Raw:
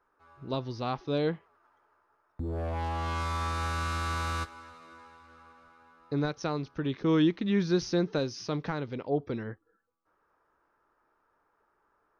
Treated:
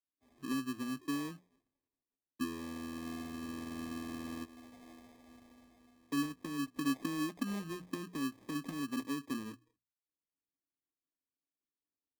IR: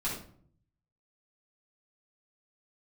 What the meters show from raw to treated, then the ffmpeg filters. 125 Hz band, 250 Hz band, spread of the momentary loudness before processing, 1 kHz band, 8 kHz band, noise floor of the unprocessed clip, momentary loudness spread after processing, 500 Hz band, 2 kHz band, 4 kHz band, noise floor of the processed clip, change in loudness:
−16.0 dB, −5.5 dB, 12 LU, −11.5 dB, −3.0 dB, −74 dBFS, 19 LU, −17.0 dB, −7.5 dB, −8.0 dB, below −85 dBFS, −8.5 dB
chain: -filter_complex "[0:a]agate=range=-33dB:threshold=-56dB:ratio=3:detection=peak,acrossover=split=100|570[link_01][link_02][link_03];[link_01]acompressor=threshold=-50dB:ratio=4[link_04];[link_02]acompressor=threshold=-27dB:ratio=4[link_05];[link_03]acompressor=threshold=-50dB:ratio=4[link_06];[link_04][link_05][link_06]amix=inputs=3:normalize=0,bass=frequency=250:gain=-4,treble=frequency=4000:gain=-14,acrossover=split=150|1400[link_07][link_08][link_09];[link_08]acompressor=threshold=-42dB:ratio=6[link_10];[link_07][link_10][link_09]amix=inputs=3:normalize=0,asplit=3[link_11][link_12][link_13];[link_11]bandpass=frequency=270:width_type=q:width=8,volume=0dB[link_14];[link_12]bandpass=frequency=2290:width_type=q:width=8,volume=-6dB[link_15];[link_13]bandpass=frequency=3010:width_type=q:width=8,volume=-9dB[link_16];[link_14][link_15][link_16]amix=inputs=3:normalize=0,acrusher=samples=31:mix=1:aa=0.000001,bandreject=frequency=60:width_type=h:width=6,bandreject=frequency=120:width_type=h:width=6,bandreject=frequency=180:width_type=h:width=6,volume=14dB"

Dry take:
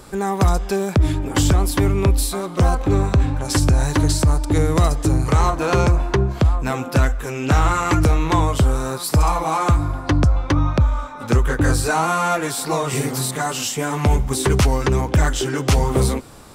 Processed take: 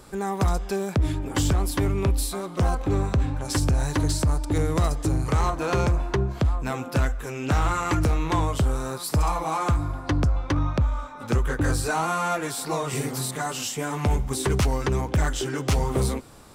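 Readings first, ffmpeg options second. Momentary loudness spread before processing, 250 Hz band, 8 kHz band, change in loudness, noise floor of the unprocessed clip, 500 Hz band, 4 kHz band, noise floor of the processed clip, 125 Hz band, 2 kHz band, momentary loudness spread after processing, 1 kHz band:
5 LU, −6.0 dB, −6.0 dB, −6.0 dB, −31 dBFS, −6.0 dB, −6.0 dB, −37 dBFS, −6.5 dB, −6.0 dB, 5 LU, −6.0 dB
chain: -af "asoftclip=type=hard:threshold=-10dB,volume=-6dB"

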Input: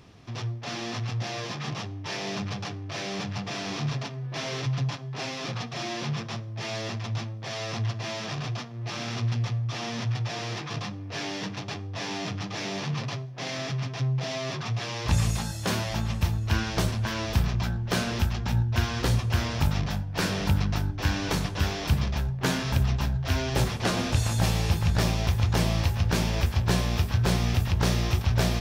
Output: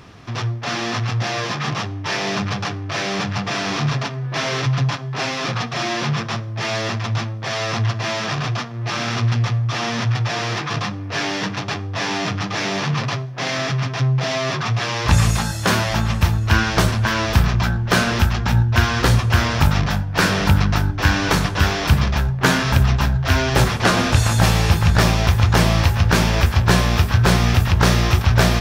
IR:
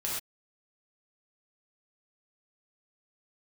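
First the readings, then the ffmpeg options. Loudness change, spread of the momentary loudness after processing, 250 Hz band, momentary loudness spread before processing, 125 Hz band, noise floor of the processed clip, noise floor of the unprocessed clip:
+9.5 dB, 8 LU, +8.5 dB, 9 LU, +8.5 dB, −28 dBFS, −37 dBFS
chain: -af "equalizer=frequency=1400:width_type=o:width=1.2:gain=6,volume=8.5dB"

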